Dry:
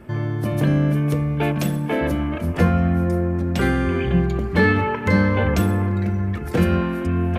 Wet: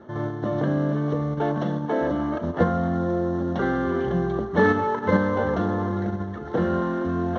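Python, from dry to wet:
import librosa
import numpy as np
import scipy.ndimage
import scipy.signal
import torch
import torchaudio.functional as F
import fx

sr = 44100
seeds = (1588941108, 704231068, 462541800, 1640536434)

p1 = fx.cvsd(x, sr, bps=32000)
p2 = fx.highpass(p1, sr, hz=540.0, slope=6)
p3 = fx.level_steps(p2, sr, step_db=11)
p4 = p2 + (p3 * 10.0 ** (2.5 / 20.0))
y = scipy.signal.lfilter(np.full(18, 1.0 / 18), 1.0, p4)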